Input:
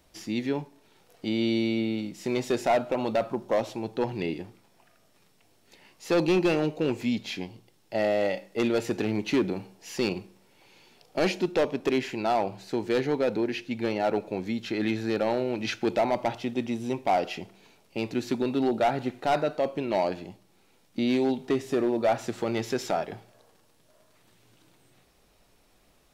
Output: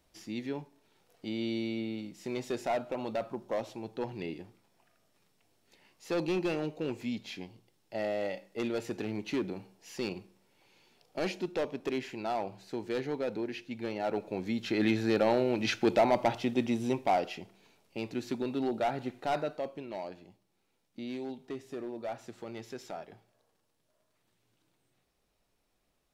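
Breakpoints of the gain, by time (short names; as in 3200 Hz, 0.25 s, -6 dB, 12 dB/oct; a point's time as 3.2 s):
13.92 s -8 dB
14.8 s 0 dB
16.86 s 0 dB
17.39 s -6.5 dB
19.41 s -6.5 dB
19.98 s -14 dB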